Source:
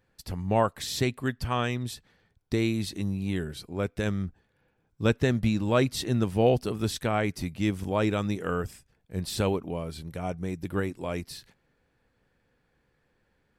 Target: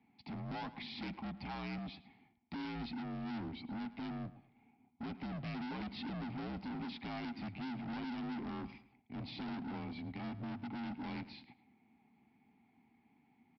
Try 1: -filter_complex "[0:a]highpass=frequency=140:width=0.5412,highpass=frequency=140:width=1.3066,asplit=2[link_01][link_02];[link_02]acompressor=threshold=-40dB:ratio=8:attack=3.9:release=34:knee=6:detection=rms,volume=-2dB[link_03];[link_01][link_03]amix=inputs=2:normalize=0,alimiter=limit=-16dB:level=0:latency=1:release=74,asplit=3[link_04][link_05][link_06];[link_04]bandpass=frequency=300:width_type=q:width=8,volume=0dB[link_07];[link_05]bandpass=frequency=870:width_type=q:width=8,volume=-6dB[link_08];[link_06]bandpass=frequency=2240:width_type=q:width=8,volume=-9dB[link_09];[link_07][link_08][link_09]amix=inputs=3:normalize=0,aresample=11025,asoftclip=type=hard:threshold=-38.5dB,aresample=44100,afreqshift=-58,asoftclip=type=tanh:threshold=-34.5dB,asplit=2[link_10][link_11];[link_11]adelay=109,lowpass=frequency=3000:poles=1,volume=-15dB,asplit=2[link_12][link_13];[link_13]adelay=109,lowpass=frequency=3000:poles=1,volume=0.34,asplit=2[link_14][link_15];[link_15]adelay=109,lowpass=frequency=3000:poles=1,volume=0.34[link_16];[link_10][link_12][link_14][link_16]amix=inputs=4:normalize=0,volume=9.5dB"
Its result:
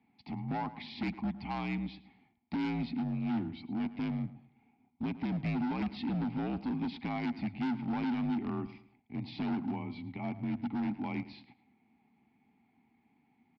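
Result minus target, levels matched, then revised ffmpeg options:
hard clipping: distortion −6 dB
-filter_complex "[0:a]highpass=frequency=140:width=0.5412,highpass=frequency=140:width=1.3066,asplit=2[link_01][link_02];[link_02]acompressor=threshold=-40dB:ratio=8:attack=3.9:release=34:knee=6:detection=rms,volume=-2dB[link_03];[link_01][link_03]amix=inputs=2:normalize=0,alimiter=limit=-16dB:level=0:latency=1:release=74,asplit=3[link_04][link_05][link_06];[link_04]bandpass=frequency=300:width_type=q:width=8,volume=0dB[link_07];[link_05]bandpass=frequency=870:width_type=q:width=8,volume=-6dB[link_08];[link_06]bandpass=frequency=2240:width_type=q:width=8,volume=-9dB[link_09];[link_07][link_08][link_09]amix=inputs=3:normalize=0,aresample=11025,asoftclip=type=hard:threshold=-50dB,aresample=44100,afreqshift=-58,asoftclip=type=tanh:threshold=-34.5dB,asplit=2[link_10][link_11];[link_11]adelay=109,lowpass=frequency=3000:poles=1,volume=-15dB,asplit=2[link_12][link_13];[link_13]adelay=109,lowpass=frequency=3000:poles=1,volume=0.34,asplit=2[link_14][link_15];[link_15]adelay=109,lowpass=frequency=3000:poles=1,volume=0.34[link_16];[link_10][link_12][link_14][link_16]amix=inputs=4:normalize=0,volume=9.5dB"

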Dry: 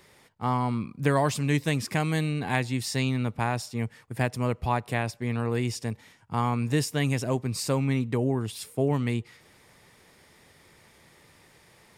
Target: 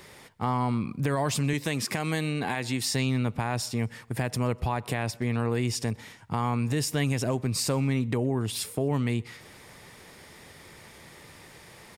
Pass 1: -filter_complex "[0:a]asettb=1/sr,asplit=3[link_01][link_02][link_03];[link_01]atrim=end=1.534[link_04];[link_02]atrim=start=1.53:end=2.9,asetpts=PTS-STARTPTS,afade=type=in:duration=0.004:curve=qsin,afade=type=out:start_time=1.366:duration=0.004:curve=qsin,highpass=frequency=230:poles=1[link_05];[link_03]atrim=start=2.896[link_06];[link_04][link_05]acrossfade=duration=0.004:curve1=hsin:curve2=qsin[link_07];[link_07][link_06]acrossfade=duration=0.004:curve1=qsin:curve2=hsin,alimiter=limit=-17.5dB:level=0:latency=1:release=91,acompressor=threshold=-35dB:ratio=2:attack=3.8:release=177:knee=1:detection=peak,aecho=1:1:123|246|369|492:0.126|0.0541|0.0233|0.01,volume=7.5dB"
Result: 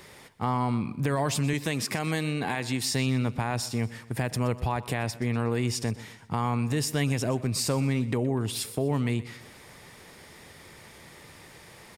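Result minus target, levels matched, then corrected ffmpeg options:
echo-to-direct +10.5 dB
-filter_complex "[0:a]asettb=1/sr,asplit=3[link_01][link_02][link_03];[link_01]atrim=end=1.534[link_04];[link_02]atrim=start=1.53:end=2.9,asetpts=PTS-STARTPTS,afade=type=in:duration=0.004:curve=qsin,afade=type=out:start_time=1.366:duration=0.004:curve=qsin,highpass=frequency=230:poles=1[link_05];[link_03]atrim=start=2.896[link_06];[link_04][link_05]acrossfade=duration=0.004:curve1=hsin:curve2=qsin[link_07];[link_07][link_06]acrossfade=duration=0.004:curve1=qsin:curve2=hsin,alimiter=limit=-17.5dB:level=0:latency=1:release=91,acompressor=threshold=-35dB:ratio=2:attack=3.8:release=177:knee=1:detection=peak,aecho=1:1:123|246:0.0376|0.0162,volume=7.5dB"

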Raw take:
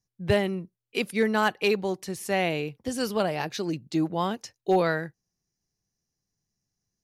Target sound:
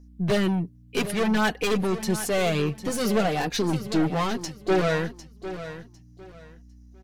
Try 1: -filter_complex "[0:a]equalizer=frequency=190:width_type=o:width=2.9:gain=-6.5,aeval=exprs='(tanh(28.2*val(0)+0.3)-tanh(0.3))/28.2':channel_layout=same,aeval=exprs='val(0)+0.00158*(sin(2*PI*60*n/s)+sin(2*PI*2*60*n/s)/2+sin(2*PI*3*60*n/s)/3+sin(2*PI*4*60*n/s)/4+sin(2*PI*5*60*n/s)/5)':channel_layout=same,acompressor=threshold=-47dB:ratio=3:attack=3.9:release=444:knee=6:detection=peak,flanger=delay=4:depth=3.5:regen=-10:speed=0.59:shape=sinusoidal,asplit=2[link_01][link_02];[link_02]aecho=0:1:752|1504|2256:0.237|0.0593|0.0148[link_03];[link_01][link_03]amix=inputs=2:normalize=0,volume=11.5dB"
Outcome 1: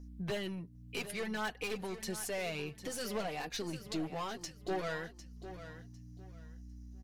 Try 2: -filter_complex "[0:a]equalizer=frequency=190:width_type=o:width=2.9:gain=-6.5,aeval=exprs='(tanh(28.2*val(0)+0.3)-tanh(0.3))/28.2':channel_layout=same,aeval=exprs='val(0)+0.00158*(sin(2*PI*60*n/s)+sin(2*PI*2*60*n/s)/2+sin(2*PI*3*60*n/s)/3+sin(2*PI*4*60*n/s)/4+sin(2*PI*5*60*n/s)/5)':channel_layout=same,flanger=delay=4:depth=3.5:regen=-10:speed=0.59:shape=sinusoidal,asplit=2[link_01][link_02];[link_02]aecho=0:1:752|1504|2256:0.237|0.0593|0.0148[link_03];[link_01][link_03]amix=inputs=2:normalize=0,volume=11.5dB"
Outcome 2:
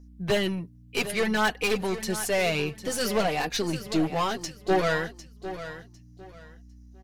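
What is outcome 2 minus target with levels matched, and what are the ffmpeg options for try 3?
250 Hz band −3.0 dB
-filter_complex "[0:a]equalizer=frequency=190:width_type=o:width=2.9:gain=2.5,aeval=exprs='(tanh(28.2*val(0)+0.3)-tanh(0.3))/28.2':channel_layout=same,aeval=exprs='val(0)+0.00158*(sin(2*PI*60*n/s)+sin(2*PI*2*60*n/s)/2+sin(2*PI*3*60*n/s)/3+sin(2*PI*4*60*n/s)/4+sin(2*PI*5*60*n/s)/5)':channel_layout=same,flanger=delay=4:depth=3.5:regen=-10:speed=0.59:shape=sinusoidal,asplit=2[link_01][link_02];[link_02]aecho=0:1:752|1504|2256:0.237|0.0593|0.0148[link_03];[link_01][link_03]amix=inputs=2:normalize=0,volume=11.5dB"

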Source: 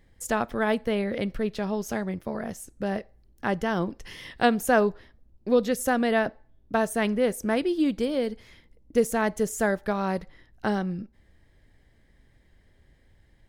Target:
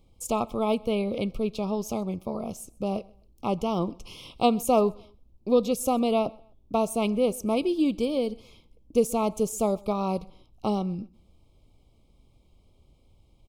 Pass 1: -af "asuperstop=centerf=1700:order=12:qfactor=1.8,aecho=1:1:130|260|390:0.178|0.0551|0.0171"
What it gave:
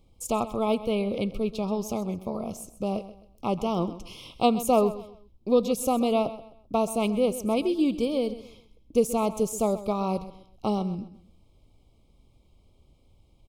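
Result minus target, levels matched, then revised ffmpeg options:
echo-to-direct +11 dB
-af "asuperstop=centerf=1700:order=12:qfactor=1.8,aecho=1:1:130|260:0.0501|0.0155"

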